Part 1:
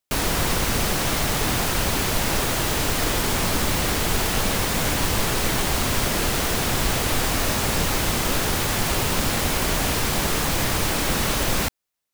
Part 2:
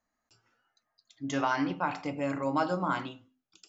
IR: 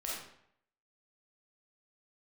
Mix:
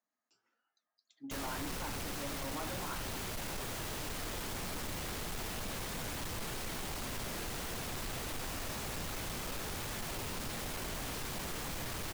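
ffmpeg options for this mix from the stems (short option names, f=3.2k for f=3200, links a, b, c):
-filter_complex "[0:a]adelay=1200,volume=-10dB[a];[1:a]highpass=f=190:w=0.5412,highpass=f=190:w=1.3066,volume=-5dB[b];[a][b]amix=inputs=2:normalize=0,flanger=delay=4.3:depth=8.3:regen=-65:speed=1.7:shape=triangular,asoftclip=type=tanh:threshold=-35dB"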